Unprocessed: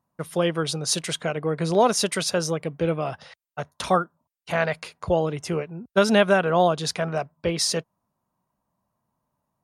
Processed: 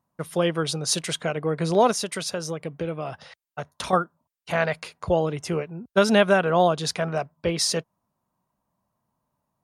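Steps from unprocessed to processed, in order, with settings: 1.91–3.93 s: compression 2.5:1, threshold -28 dBFS, peak gain reduction 7.5 dB

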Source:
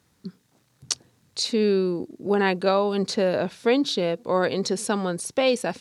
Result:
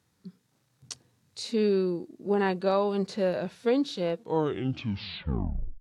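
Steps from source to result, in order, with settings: tape stop on the ending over 1.66 s; harmonic-percussive split percussive -10 dB; trim -3.5 dB; AAC 64 kbps 44.1 kHz

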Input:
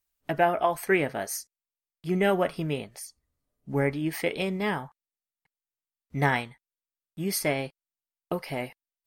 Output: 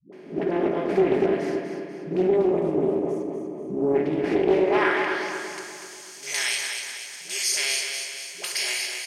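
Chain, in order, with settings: spectral levelling over time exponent 0.4; frequency weighting D; band-pass sweep 280 Hz -> 7.1 kHz, 4.33–5.22 s; peaking EQ 390 Hz +6 dB 0.59 oct; hum notches 50/100/150/200/250/300/350 Hz; in parallel at -2.5 dB: compressor with a negative ratio -34 dBFS, ratio -1; on the sum: time-frequency box 2.23–3.82 s, 1.3–5.8 kHz -16 dB; phase dispersion highs, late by 127 ms, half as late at 320 Hz; on a send: feedback delay 243 ms, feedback 51%, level -6 dB; on the sum: simulated room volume 2800 m³, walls mixed, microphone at 1.3 m; loudspeaker Doppler distortion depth 0.25 ms

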